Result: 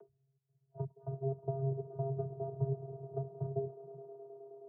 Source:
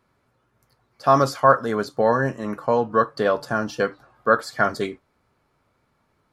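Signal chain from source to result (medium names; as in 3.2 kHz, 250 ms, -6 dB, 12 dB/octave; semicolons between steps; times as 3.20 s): self-modulated delay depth 0.49 ms; compression 6:1, threshold -31 dBFS, peak gain reduction 18.5 dB; trance gate "xxxxxx.." 186 bpm -60 dB; on a send: echo with a slow build-up 142 ms, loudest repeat 5, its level -17.5 dB; on the sum: speed mistake 33 rpm record played at 45 rpm; vocoder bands 16, square 135 Hz; inverse Chebyshev low-pass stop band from 2 kHz, stop band 60 dB; upward compressor, threshold -45 dBFS; spectral noise reduction 24 dB; trim +1 dB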